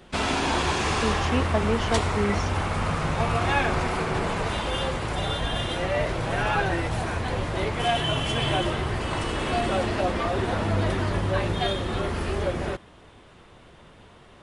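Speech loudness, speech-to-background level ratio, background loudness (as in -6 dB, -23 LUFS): -28.5 LUFS, -2.5 dB, -26.0 LUFS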